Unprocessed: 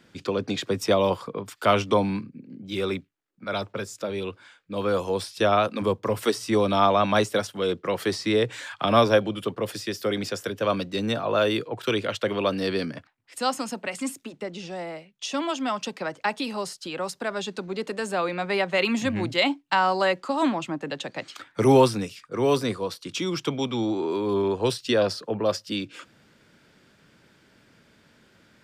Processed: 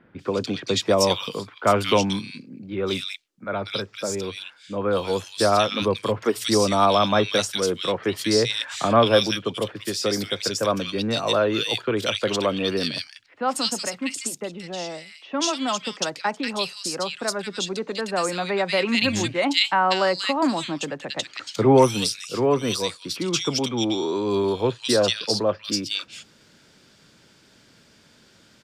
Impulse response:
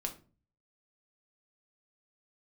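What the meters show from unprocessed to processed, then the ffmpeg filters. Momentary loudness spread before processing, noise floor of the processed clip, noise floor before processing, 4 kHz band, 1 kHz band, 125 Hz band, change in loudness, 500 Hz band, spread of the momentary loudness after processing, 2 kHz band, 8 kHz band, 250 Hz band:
12 LU, -56 dBFS, -60 dBFS, +7.0 dB, +1.5 dB, +1.5 dB, +2.5 dB, +1.5 dB, 11 LU, +2.0 dB, +9.0 dB, +1.5 dB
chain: -filter_complex "[0:a]equalizer=f=5.7k:w=0.58:g=8.5,acrossover=split=2000[a][b];[b]adelay=190[c];[a][c]amix=inputs=2:normalize=0,volume=1.5dB"

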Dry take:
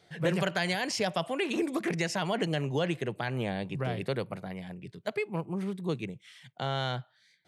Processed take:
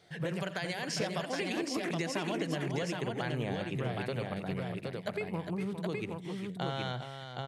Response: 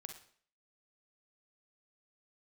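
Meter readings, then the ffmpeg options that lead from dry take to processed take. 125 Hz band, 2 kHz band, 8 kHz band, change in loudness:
-2.5 dB, -3.5 dB, -2.0 dB, -3.5 dB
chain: -filter_complex "[0:a]acompressor=threshold=-32dB:ratio=6,asplit=2[a][b];[b]aecho=0:1:85|406|770:0.178|0.376|0.668[c];[a][c]amix=inputs=2:normalize=0"

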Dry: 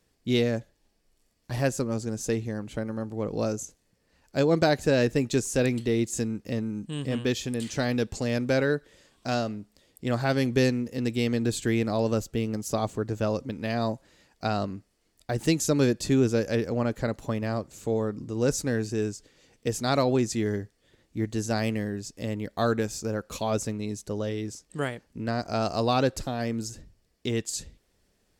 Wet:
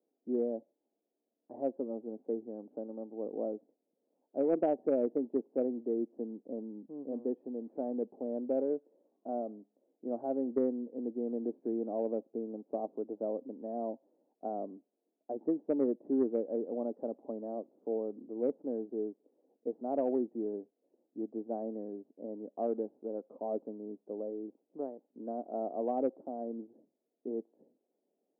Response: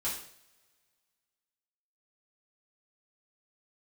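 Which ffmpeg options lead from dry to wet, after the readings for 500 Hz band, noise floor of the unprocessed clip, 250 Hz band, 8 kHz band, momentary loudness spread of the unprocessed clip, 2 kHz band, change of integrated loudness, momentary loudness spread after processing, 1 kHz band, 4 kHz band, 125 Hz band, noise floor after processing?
-6.5 dB, -70 dBFS, -8.5 dB, under -40 dB, 10 LU, under -30 dB, -8.5 dB, 12 LU, -10.0 dB, under -40 dB, -29.0 dB, -85 dBFS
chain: -af "asuperpass=centerf=430:order=8:qfactor=0.8,aeval=exprs='0.237*(cos(1*acos(clip(val(0)/0.237,-1,1)))-cos(1*PI/2))+0.0211*(cos(3*acos(clip(val(0)/0.237,-1,1)))-cos(3*PI/2))+0.00531*(cos(5*acos(clip(val(0)/0.237,-1,1)))-cos(5*PI/2))':c=same,volume=-5dB"

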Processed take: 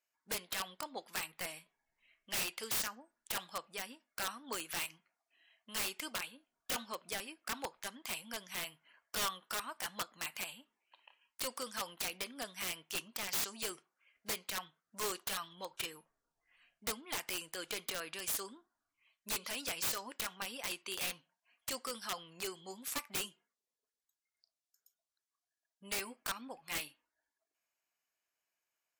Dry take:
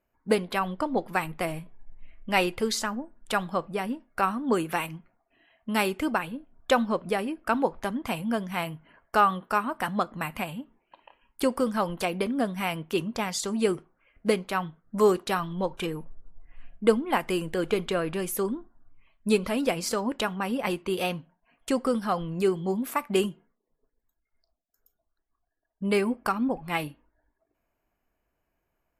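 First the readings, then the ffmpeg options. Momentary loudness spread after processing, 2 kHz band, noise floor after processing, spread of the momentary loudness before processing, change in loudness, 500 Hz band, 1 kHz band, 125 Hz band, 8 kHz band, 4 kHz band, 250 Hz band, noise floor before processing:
8 LU, -9.5 dB, under -85 dBFS, 9 LU, -11.5 dB, -20.5 dB, -16.5 dB, -22.5 dB, -1.0 dB, -4.0 dB, -23.5 dB, -79 dBFS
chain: -af "bandpass=f=6.1k:t=q:w=0.96:csg=0,aeval=exprs='(mod(42.2*val(0)+1,2)-1)/42.2':c=same,volume=3.5dB"

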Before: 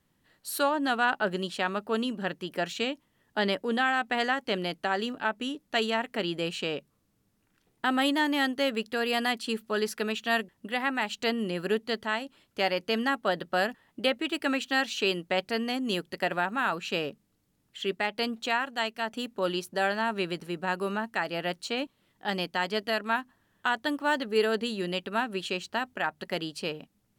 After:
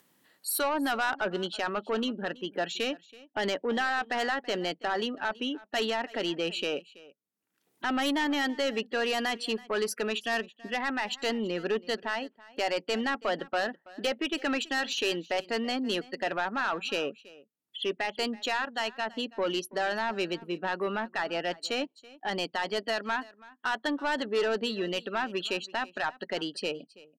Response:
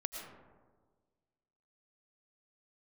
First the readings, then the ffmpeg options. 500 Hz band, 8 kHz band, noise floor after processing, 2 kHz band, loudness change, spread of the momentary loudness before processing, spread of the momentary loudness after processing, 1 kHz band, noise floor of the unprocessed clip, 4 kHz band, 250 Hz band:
-0.5 dB, +2.5 dB, -73 dBFS, -2.0 dB, -1.5 dB, 7 LU, 6 LU, -2.0 dB, -72 dBFS, -0.5 dB, -2.0 dB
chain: -filter_complex "[0:a]afftdn=nr=36:nf=-41,highpass=240,highshelf=f=8.3k:g=7.5,asplit=2[a][b];[b]alimiter=limit=-20.5dB:level=0:latency=1:release=42,volume=-2dB[c];[a][c]amix=inputs=2:normalize=0,acompressor=mode=upward:threshold=-36dB:ratio=2.5,asoftclip=type=tanh:threshold=-20dB,aecho=1:1:329:0.0891,volume=-2dB"

